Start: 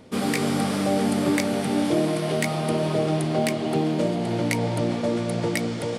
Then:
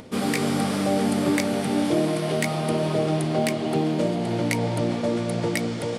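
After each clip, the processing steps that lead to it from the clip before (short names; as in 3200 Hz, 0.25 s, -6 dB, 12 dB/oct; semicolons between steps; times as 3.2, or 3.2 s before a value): upward compressor, threshold -38 dBFS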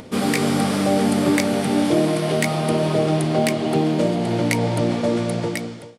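ending faded out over 0.75 s; gain +4 dB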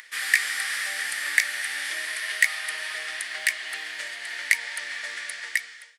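resonant high-pass 1800 Hz, resonance Q 9.6; high shelf 3000 Hz +11 dB; gain -10.5 dB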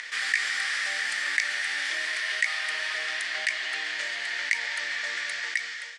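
LPF 7300 Hz 24 dB/oct; fast leveller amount 50%; gain -6.5 dB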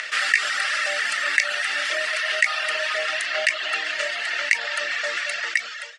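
reverb removal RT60 0.95 s; small resonant body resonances 610/1300/2700 Hz, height 13 dB, ringing for 30 ms; gain +6 dB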